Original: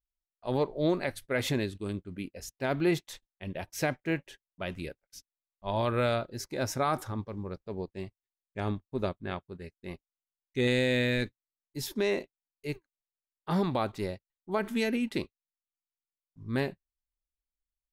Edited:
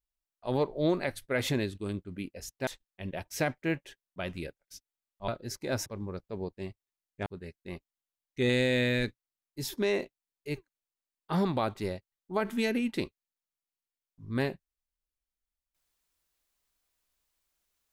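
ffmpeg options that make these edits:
ffmpeg -i in.wav -filter_complex "[0:a]asplit=5[link_01][link_02][link_03][link_04][link_05];[link_01]atrim=end=2.672[link_06];[link_02]atrim=start=3.088:end=5.702[link_07];[link_03]atrim=start=6.168:end=6.752[link_08];[link_04]atrim=start=7.228:end=8.632[link_09];[link_05]atrim=start=9.438[link_10];[link_06][link_07]acrossfade=duration=0.004:curve1=hsin:curve2=hsin[link_11];[link_11][link_08]acrossfade=duration=0.004:curve1=hsin:curve2=hsin[link_12];[link_12][link_09]acrossfade=duration=0.004:curve1=hsin:curve2=hsin[link_13];[link_13][link_10]acrossfade=duration=0.004:curve1=hsin:curve2=hsin" out.wav

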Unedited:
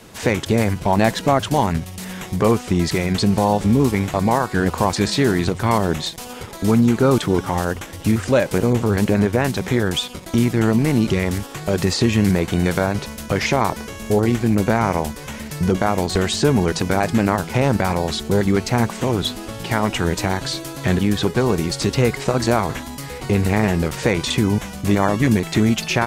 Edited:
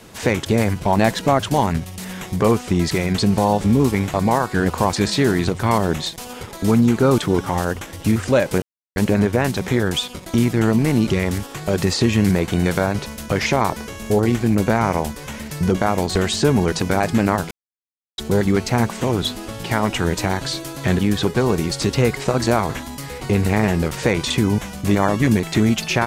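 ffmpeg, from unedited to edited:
ffmpeg -i in.wav -filter_complex "[0:a]asplit=5[link_01][link_02][link_03][link_04][link_05];[link_01]atrim=end=8.62,asetpts=PTS-STARTPTS,afade=type=out:start_time=8.616:duration=0.004:curve=hsin[link_06];[link_02]atrim=start=8.62:end=8.96,asetpts=PTS-STARTPTS,volume=0[link_07];[link_03]atrim=start=8.96:end=17.51,asetpts=PTS-STARTPTS,afade=type=in:duration=0.004:curve=hsin,afade=type=out:start_time=8.546:duration=0.004:curve=hsin[link_08];[link_04]atrim=start=17.51:end=18.18,asetpts=PTS-STARTPTS,volume=0[link_09];[link_05]atrim=start=18.18,asetpts=PTS-STARTPTS,afade=type=in:duration=0.004:curve=hsin[link_10];[link_06][link_07][link_08][link_09][link_10]concat=n=5:v=0:a=1" out.wav

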